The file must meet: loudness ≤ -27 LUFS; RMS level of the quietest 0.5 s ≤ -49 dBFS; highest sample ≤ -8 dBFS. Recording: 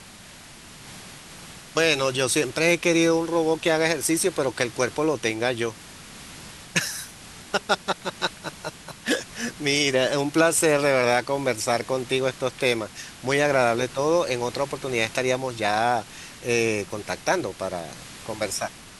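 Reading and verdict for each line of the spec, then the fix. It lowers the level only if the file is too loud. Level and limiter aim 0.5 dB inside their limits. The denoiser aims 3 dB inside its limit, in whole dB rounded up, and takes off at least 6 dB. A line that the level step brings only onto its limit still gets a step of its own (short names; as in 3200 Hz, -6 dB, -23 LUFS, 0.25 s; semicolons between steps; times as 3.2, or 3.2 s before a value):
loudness -23.5 LUFS: fail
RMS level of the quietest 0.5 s -45 dBFS: fail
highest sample -4.0 dBFS: fail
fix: denoiser 6 dB, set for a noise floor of -45 dBFS; gain -4 dB; limiter -8.5 dBFS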